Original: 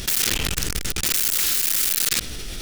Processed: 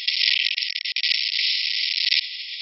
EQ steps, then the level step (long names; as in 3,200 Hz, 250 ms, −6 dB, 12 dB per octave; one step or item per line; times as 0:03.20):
linear-phase brick-wall band-pass 1,900–5,500 Hz
+7.0 dB